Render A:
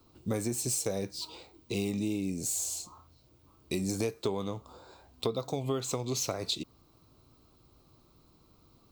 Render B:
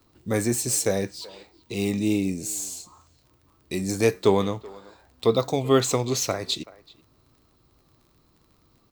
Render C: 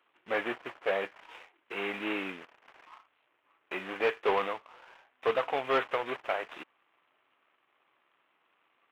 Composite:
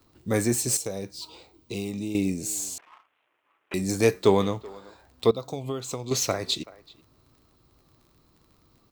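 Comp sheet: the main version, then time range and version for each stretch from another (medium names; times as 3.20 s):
B
0.77–2.15 s: from A
2.78–3.74 s: from C
5.31–6.11 s: from A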